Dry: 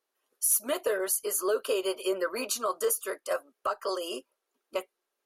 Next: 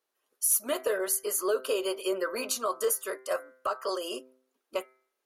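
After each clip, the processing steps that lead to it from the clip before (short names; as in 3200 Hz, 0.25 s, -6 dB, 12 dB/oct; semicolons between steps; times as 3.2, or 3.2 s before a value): de-hum 129.2 Hz, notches 18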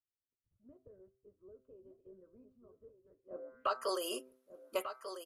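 low-pass sweep 100 Hz -> 12000 Hz, 3.22–3.85; on a send: echo 1.193 s -9.5 dB; on the sum: gain -4 dB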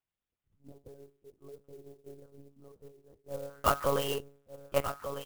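monotone LPC vocoder at 8 kHz 140 Hz; clock jitter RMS 0.039 ms; gain +7.5 dB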